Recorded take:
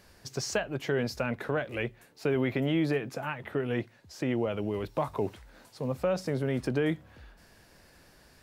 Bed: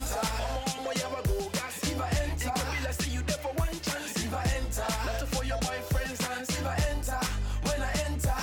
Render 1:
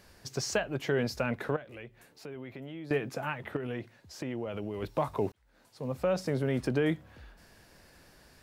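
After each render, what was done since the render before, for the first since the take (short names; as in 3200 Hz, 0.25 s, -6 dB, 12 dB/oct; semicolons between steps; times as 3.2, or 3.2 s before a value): 1.56–2.91 compressor 2:1, threshold -52 dBFS; 3.56–4.82 compressor 5:1, threshold -32 dBFS; 5.32–6.12 fade in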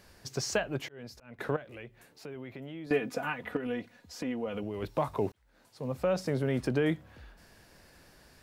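0.69–1.39 auto swell 0.754 s; 2.86–4.63 comb 4.1 ms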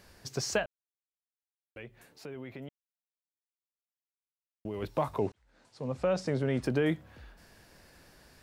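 0.66–1.76 mute; 2.69–4.65 mute; 5.18–6.62 LPF 8800 Hz 24 dB/oct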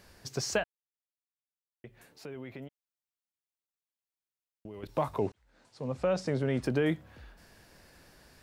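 0.64–1.84 mute; 2.64–4.89 level quantiser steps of 11 dB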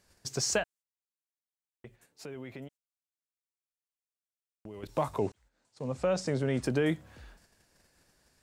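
gate -55 dBFS, range -12 dB; bell 7700 Hz +8 dB 0.94 oct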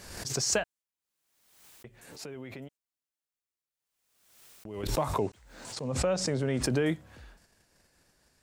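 backwards sustainer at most 55 dB/s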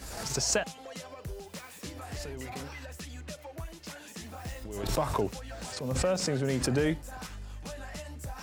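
add bed -11.5 dB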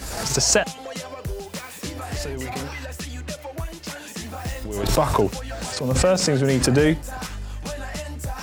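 gain +10 dB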